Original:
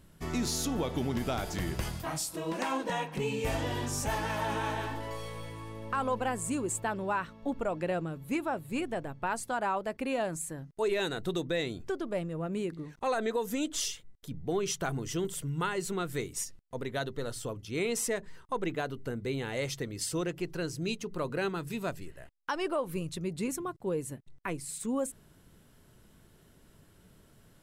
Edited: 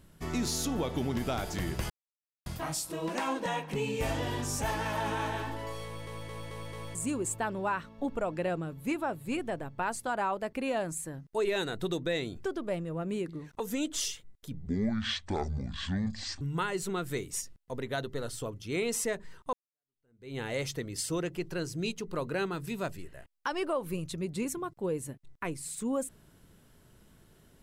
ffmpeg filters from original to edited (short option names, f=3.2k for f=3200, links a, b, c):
-filter_complex "[0:a]asplit=11[a][b][c][d][e][f][g][h][i][j][k];[a]atrim=end=1.9,asetpts=PTS-STARTPTS,afade=t=out:st=1.896:d=0.004:c=hsin,apad=pad_dur=0.56[l];[b]atrim=start=1.9:end=5.512,asetpts=PTS-STARTPTS,afade=t=in:d=0.004:c=hsin[m];[c]atrim=start=5.288:end=5.512[n];[d]atrim=start=5.288:end=5.512[o];[e]atrim=start=5.288:end=5.512[p];[f]atrim=start=5.288:end=5.512[q];[g]atrim=start=6.388:end=13.042[r];[h]atrim=start=13.398:end=14.464[s];[i]atrim=start=14.46:end=15.44,asetpts=PTS-STARTPTS,asetrate=24696,aresample=44100[t];[j]atrim=start=15.436:end=18.56,asetpts=PTS-STARTPTS,afade=t=out:st=3.12:d=0.004:c=hsin[u];[k]atrim=start=18.56,asetpts=PTS-STARTPTS,afade=t=in:d=0.85:c=exp[v];[l][m]concat=n=2:v=0:a=1[w];[w][n]acrossfade=d=0.004:c1=hsin:c2=hsin[x];[x][o]acrossfade=d=0.004:c1=hsin:c2=hsin[y];[y][p]acrossfade=d=0.004:c1=hsin:c2=hsin[z];[z][q]acrossfade=d=0.004:c1=hsin:c2=hsin[aa];[aa][r]acrossfade=d=0.004:c1=hsin:c2=hsin[ab];[ab][s]acrossfade=d=0.004:c1=hsin:c2=hsin[ac];[ac][t]acrossfade=d=0.004:c1=hsin:c2=hsin[ad];[u][v]concat=n=2:v=0:a=1[ae];[ad][ae]acrossfade=d=0.004:c1=hsin:c2=hsin"